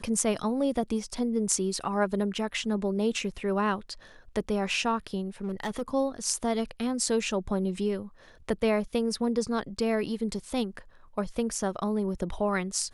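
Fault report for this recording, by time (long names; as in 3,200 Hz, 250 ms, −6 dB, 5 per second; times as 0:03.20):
0:05.44–0:05.82: clipping −27 dBFS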